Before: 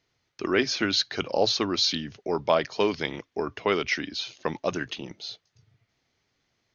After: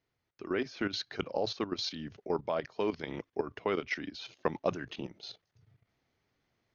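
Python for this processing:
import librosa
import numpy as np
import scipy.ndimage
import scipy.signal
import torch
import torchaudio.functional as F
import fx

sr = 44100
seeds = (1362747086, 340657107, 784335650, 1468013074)

y = fx.level_steps(x, sr, step_db=13)
y = fx.high_shelf(y, sr, hz=2900.0, db=-11.0)
y = fx.rider(y, sr, range_db=4, speed_s=0.5)
y = y * librosa.db_to_amplitude(-2.0)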